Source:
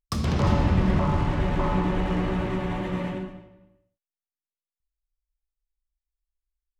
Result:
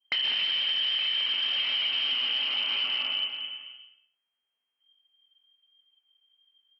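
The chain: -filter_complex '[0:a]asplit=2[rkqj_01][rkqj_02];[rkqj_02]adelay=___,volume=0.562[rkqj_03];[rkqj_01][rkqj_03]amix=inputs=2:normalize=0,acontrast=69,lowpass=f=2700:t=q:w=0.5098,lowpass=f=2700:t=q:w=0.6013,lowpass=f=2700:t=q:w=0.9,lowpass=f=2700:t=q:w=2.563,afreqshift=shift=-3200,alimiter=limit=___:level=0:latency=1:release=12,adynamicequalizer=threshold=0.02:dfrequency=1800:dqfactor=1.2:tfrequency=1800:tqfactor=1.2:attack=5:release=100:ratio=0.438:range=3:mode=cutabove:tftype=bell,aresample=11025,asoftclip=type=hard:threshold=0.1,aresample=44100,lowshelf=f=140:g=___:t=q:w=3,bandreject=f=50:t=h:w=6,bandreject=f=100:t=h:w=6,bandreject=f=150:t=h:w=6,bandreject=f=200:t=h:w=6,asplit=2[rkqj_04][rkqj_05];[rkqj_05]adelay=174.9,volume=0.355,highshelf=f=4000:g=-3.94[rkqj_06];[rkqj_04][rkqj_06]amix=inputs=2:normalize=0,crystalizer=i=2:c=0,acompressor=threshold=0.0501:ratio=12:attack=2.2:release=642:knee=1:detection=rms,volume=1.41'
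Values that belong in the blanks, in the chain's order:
20, 0.251, -6.5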